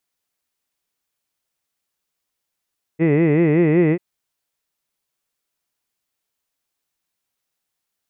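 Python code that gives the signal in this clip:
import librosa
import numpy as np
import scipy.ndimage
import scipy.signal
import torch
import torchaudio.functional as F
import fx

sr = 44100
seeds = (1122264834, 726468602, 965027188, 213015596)

y = fx.vowel(sr, seeds[0], length_s=0.99, word='hid', hz=153.0, glide_st=1.5, vibrato_hz=5.3, vibrato_st=1.5)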